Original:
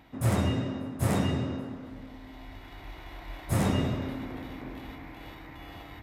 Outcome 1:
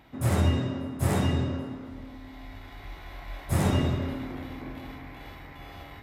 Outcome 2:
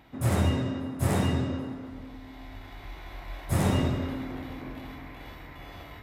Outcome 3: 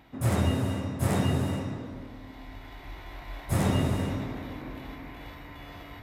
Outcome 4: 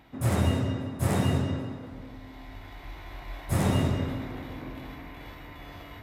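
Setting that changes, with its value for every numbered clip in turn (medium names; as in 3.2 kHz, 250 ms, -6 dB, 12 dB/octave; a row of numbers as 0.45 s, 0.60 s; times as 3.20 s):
gated-style reverb, gate: 90 ms, 160 ms, 480 ms, 270 ms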